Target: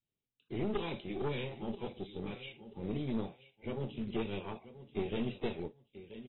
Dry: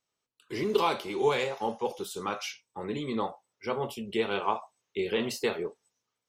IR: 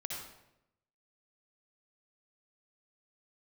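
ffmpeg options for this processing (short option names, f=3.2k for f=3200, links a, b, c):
-af "lowpass=f=4.6k:w=0.5412,lowpass=f=4.6k:w=1.3066,flanger=delay=0.4:depth=2.4:regen=90:speed=0.75:shape=triangular,firequalizer=gain_entry='entry(150,0);entry(610,-16);entry(1300,-29);entry(2300,-12)':delay=0.05:min_phase=1,aecho=1:1:982|1964:0.178|0.0409,aresample=16000,acrusher=bits=6:mode=log:mix=0:aa=0.000001,aresample=44100,aeval=exprs='(tanh(79.4*val(0)+0.6)-tanh(0.6))/79.4':c=same,adynamicequalizer=threshold=0.00126:dfrequency=460:dqfactor=2:tfrequency=460:tqfactor=2:attack=5:release=100:ratio=0.375:range=2:mode=cutabove:tftype=bell,volume=10dB" -ar 24000 -c:a aac -b:a 16k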